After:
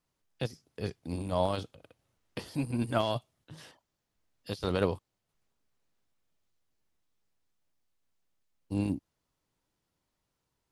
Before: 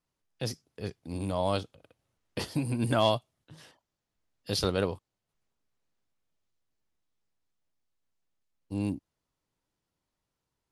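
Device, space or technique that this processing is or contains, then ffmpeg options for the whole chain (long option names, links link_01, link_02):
de-esser from a sidechain: -filter_complex "[0:a]asplit=2[link_01][link_02];[link_02]highpass=frequency=5800:width=0.5412,highpass=frequency=5800:width=1.3066,apad=whole_len=472577[link_03];[link_01][link_03]sidechaincompress=threshold=-56dB:ratio=16:attack=3.3:release=24,volume=2.5dB"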